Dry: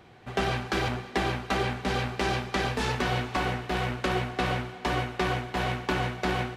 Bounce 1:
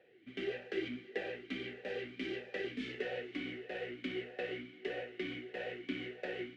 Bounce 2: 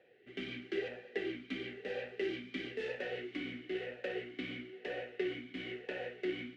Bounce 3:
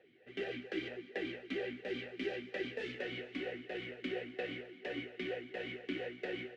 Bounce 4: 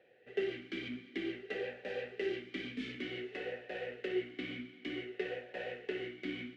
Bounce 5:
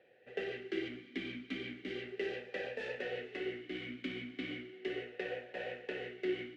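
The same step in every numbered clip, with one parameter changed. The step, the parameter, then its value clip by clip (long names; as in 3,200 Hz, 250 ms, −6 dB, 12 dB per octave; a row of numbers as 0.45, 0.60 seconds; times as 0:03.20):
formant filter swept between two vowels, speed: 1.6, 1, 4.3, 0.54, 0.36 Hertz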